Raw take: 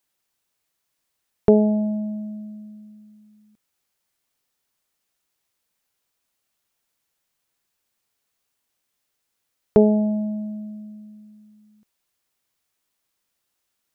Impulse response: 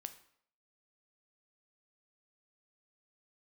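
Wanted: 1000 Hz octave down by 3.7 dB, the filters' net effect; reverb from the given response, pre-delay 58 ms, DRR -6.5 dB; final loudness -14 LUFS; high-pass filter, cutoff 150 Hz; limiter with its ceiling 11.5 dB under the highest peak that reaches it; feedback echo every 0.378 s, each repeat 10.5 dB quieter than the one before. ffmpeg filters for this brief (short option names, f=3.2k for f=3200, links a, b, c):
-filter_complex "[0:a]highpass=150,equalizer=f=1k:t=o:g=-5,alimiter=limit=-14.5dB:level=0:latency=1,aecho=1:1:378|756|1134:0.299|0.0896|0.0269,asplit=2[a][b];[1:a]atrim=start_sample=2205,adelay=58[c];[b][c]afir=irnorm=-1:irlink=0,volume=10.5dB[d];[a][d]amix=inputs=2:normalize=0,volume=6.5dB"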